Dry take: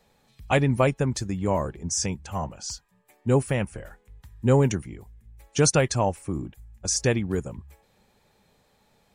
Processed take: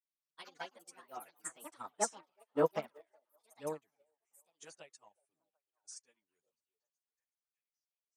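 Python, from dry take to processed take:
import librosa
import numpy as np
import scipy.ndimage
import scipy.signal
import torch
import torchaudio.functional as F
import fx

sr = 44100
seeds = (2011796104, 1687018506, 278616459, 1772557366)

p1 = fx.speed_glide(x, sr, from_pct=132, to_pct=92)
p2 = fx.doppler_pass(p1, sr, speed_mps=9, closest_m=3.2, pass_at_s=2.31)
p3 = fx.peak_eq(p2, sr, hz=8900.0, db=8.0, octaves=0.24)
p4 = fx.env_lowpass_down(p3, sr, base_hz=1400.0, full_db=-25.5)
p5 = fx.echo_pitch(p4, sr, ms=179, semitones=6, count=2, db_per_echo=-6.0)
p6 = p5 + fx.echo_stepped(p5, sr, ms=373, hz=550.0, octaves=0.7, feedback_pct=70, wet_db=-10.5, dry=0)
p7 = fx.chorus_voices(p6, sr, voices=2, hz=0.54, base_ms=10, depth_ms=3.8, mix_pct=60)
p8 = scipy.signal.sosfilt(scipy.signal.butter(2, 430.0, 'highpass', fs=sr, output='sos'), p7)
p9 = fx.high_shelf(p8, sr, hz=2800.0, db=10.5)
p10 = fx.upward_expand(p9, sr, threshold_db=-49.0, expansion=2.5)
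y = p10 * 10.0 ** (3.0 / 20.0)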